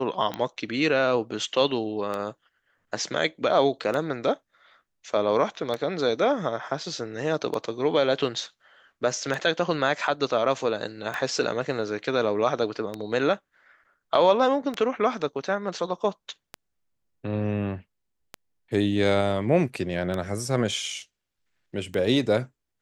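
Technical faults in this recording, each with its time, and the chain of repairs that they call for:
scratch tick 33 1/3 rpm −16 dBFS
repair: click removal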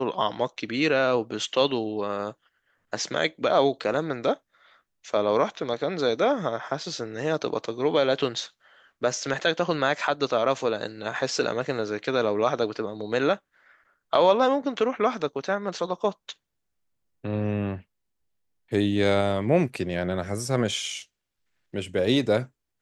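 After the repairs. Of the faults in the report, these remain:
none of them is left

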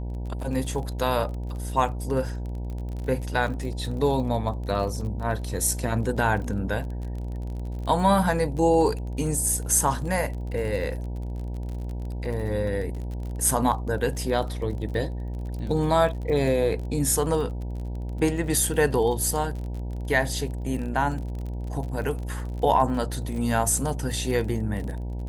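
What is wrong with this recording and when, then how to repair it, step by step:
mains buzz 60 Hz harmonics 16 −31 dBFS
surface crackle 35 per second −33 dBFS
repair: click removal
hum removal 60 Hz, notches 16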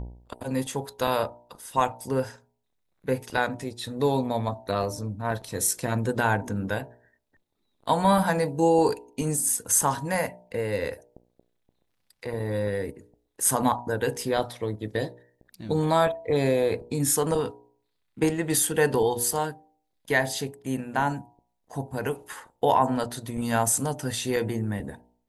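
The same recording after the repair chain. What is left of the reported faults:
none of them is left

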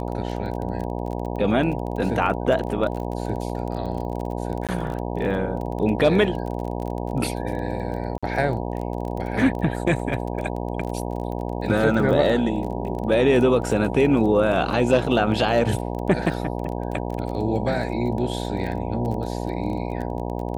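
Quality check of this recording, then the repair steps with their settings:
mains buzz 60 Hz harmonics 16 −28 dBFS
surface crackle 22 per second −29 dBFS
0:04.67–0:04.69: drop-out 17 ms
0:08.18–0:08.23: drop-out 46 ms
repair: click removal
hum removal 60 Hz, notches 16
repair the gap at 0:04.67, 17 ms
repair the gap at 0:08.18, 46 ms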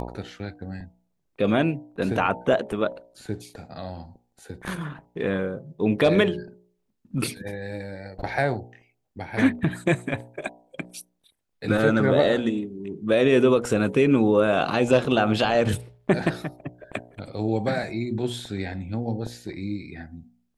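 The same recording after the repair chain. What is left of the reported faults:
none of them is left

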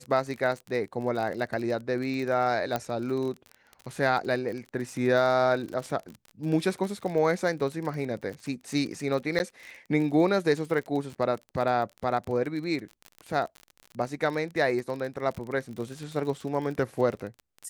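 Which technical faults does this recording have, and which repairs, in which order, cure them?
surface crackle 39 per second −33 dBFS
0:02.76: click −14 dBFS
0:09.39–0:09.40: drop-out 9.7 ms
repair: click removal
repair the gap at 0:09.39, 9.7 ms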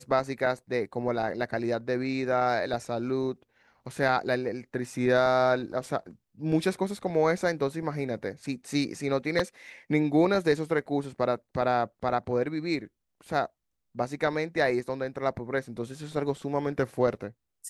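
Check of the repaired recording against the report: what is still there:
none of them is left

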